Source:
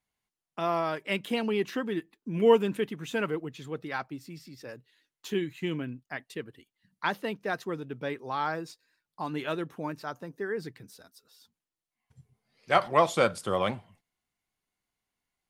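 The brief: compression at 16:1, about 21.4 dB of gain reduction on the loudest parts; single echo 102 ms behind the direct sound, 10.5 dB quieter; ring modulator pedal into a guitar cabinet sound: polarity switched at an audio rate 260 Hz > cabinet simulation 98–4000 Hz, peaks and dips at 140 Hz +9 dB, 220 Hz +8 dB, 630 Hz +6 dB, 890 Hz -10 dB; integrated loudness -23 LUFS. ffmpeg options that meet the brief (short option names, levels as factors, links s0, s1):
-af "acompressor=threshold=0.0141:ratio=16,aecho=1:1:102:0.299,aeval=exprs='val(0)*sgn(sin(2*PI*260*n/s))':c=same,highpass=98,equalizer=f=140:t=q:w=4:g=9,equalizer=f=220:t=q:w=4:g=8,equalizer=f=630:t=q:w=4:g=6,equalizer=f=890:t=q:w=4:g=-10,lowpass=f=4000:w=0.5412,lowpass=f=4000:w=1.3066,volume=8.91"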